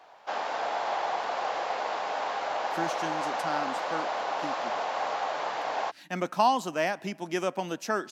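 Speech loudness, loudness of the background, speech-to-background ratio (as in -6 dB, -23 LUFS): -31.0 LUFS, -31.0 LUFS, 0.0 dB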